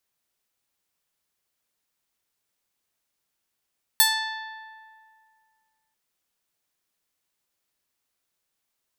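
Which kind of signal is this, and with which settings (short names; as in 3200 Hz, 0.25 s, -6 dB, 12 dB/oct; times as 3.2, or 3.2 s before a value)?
plucked string A5, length 1.94 s, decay 2.16 s, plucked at 0.35, bright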